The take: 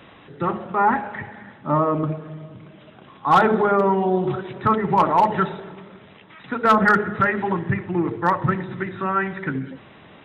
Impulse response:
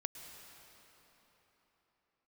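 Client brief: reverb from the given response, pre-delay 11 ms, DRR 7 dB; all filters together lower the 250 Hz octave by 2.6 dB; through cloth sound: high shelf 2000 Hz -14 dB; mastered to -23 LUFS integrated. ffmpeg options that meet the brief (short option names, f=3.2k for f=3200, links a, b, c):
-filter_complex "[0:a]equalizer=f=250:t=o:g=-3.5,asplit=2[a][b];[1:a]atrim=start_sample=2205,adelay=11[c];[b][c]afir=irnorm=-1:irlink=0,volume=-5.5dB[d];[a][d]amix=inputs=2:normalize=0,highshelf=f=2k:g=-14"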